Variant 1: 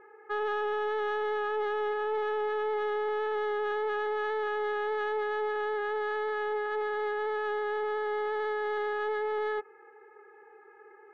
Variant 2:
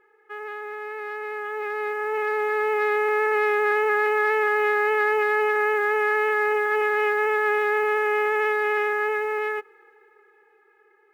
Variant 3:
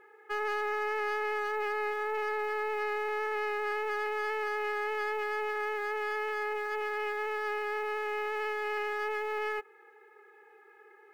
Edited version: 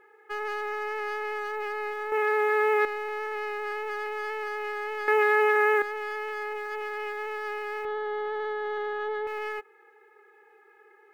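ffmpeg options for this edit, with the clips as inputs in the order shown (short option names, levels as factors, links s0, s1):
-filter_complex "[1:a]asplit=2[s0][s1];[2:a]asplit=4[s2][s3][s4][s5];[s2]atrim=end=2.122[s6];[s0]atrim=start=2.118:end=2.852[s7];[s3]atrim=start=2.848:end=5.082[s8];[s1]atrim=start=5.078:end=5.822[s9];[s4]atrim=start=5.818:end=7.852[s10];[0:a]atrim=start=7.848:end=9.272[s11];[s5]atrim=start=9.268[s12];[s6][s7]acrossfade=d=0.004:c1=hsin:c2=hsin[s13];[s13][s8]acrossfade=d=0.004:c1=hsin:c2=hsin[s14];[s14][s9]acrossfade=d=0.004:c1=hsin:c2=hsin[s15];[s15][s10]acrossfade=d=0.004:c1=hsin:c2=hsin[s16];[s16][s11]acrossfade=d=0.004:c1=hsin:c2=hsin[s17];[s17][s12]acrossfade=d=0.004:c1=hsin:c2=hsin"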